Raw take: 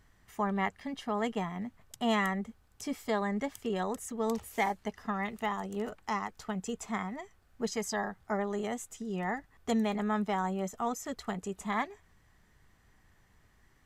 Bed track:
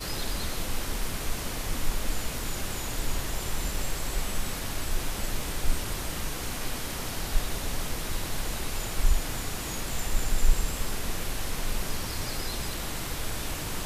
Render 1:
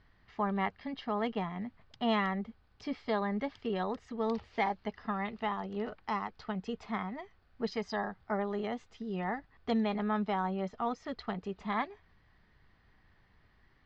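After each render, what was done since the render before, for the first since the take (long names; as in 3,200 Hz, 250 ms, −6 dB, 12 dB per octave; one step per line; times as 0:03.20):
elliptic low-pass filter 4,700 Hz, stop band 70 dB
dynamic equaliser 1,900 Hz, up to −4 dB, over −49 dBFS, Q 4.4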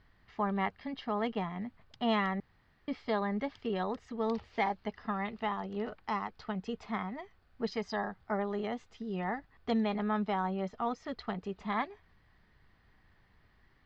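0:02.40–0:02.88: fill with room tone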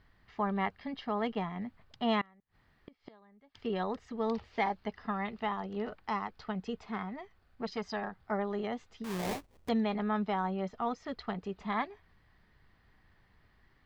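0:02.21–0:03.55: gate with flip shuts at −34 dBFS, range −28 dB
0:06.78–0:08.31: saturating transformer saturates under 690 Hz
0:09.04–0:09.69: sample-rate reduction 1,400 Hz, jitter 20%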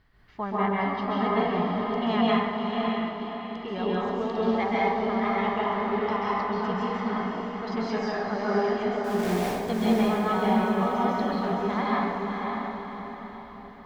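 on a send: feedback delay with all-pass diffusion 563 ms, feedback 45%, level −4 dB
on the sum: dense smooth reverb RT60 1.5 s, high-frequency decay 0.55×, pre-delay 120 ms, DRR −6.5 dB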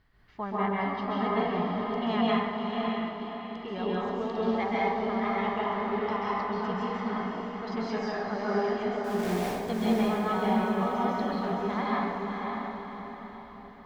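level −3 dB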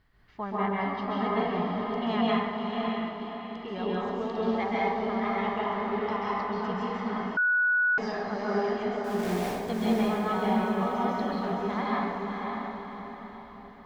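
0:07.37–0:07.98: beep over 1,470 Hz −21 dBFS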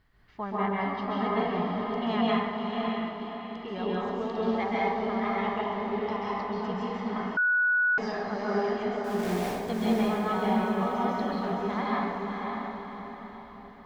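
0:05.61–0:07.16: parametric band 1,400 Hz −6 dB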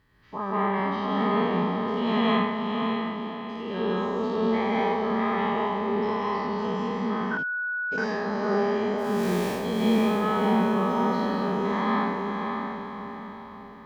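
every bin's largest magnitude spread in time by 120 ms
notch comb filter 710 Hz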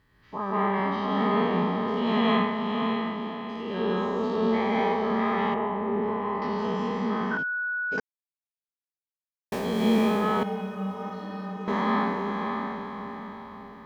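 0:05.54–0:06.42: high-frequency loss of the air 500 metres
0:08.00–0:09.52: silence
0:10.43–0:11.68: stiff-string resonator 91 Hz, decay 0.35 s, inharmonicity 0.03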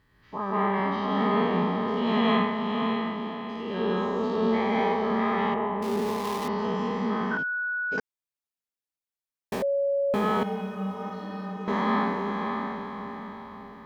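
0:05.82–0:06.48: gap after every zero crossing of 0.15 ms
0:09.62–0:10.14: beep over 559 Hz −22 dBFS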